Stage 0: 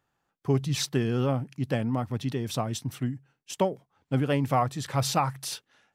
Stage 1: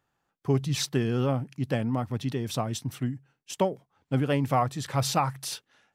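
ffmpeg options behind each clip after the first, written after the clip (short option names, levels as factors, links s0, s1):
-af anull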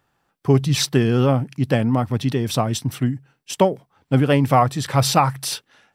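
-af "bandreject=f=6700:w=10,volume=2.82"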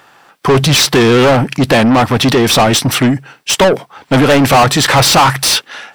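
-filter_complex "[0:a]asplit=2[s0][s1];[s1]highpass=f=720:p=1,volume=39.8,asoftclip=type=tanh:threshold=0.794[s2];[s0][s2]amix=inputs=2:normalize=0,lowpass=f=5400:p=1,volume=0.501,volume=1.12"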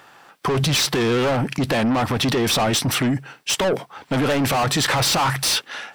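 -af "alimiter=limit=0.266:level=0:latency=1:release=34,volume=0.668"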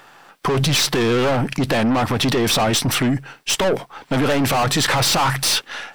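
-af "aeval=exprs='if(lt(val(0),0),0.708*val(0),val(0))':c=same,volume=1.41"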